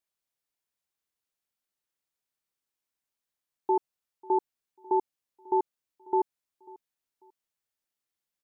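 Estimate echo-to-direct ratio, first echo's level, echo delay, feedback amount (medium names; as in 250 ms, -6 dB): -22.5 dB, -23.0 dB, 543 ms, 28%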